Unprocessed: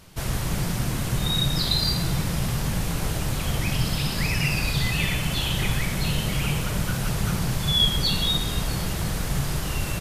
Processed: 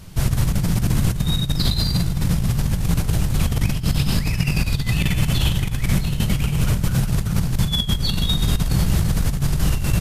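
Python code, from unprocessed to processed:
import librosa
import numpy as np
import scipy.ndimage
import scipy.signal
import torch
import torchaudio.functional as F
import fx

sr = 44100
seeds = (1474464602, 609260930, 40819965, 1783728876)

y = fx.bass_treble(x, sr, bass_db=10, treble_db=2)
y = fx.over_compress(y, sr, threshold_db=-18.0, ratio=-0.5)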